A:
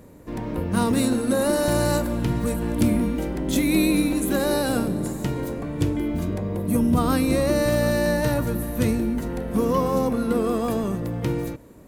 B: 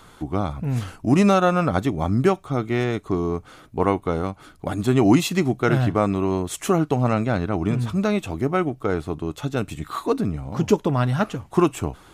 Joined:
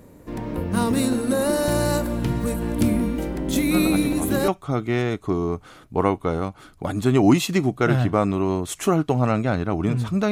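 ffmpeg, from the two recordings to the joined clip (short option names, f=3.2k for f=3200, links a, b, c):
-filter_complex "[1:a]asplit=2[a][b];[0:a]apad=whole_dur=10.31,atrim=end=10.31,atrim=end=4.482[c];[b]atrim=start=2.298:end=8.13[d];[a]atrim=start=1.53:end=2.3,asetpts=PTS-STARTPTS,volume=-9dB,afade=t=in:d=0.004:c=hsin,afade=t=out:st=0.766:d=0.004:c=hsin,adelay=3710[e];[c][d]acrossfade=d=0.004:c1=hsin:c2=hsin[f];[f][e]amix=inputs=2:normalize=0"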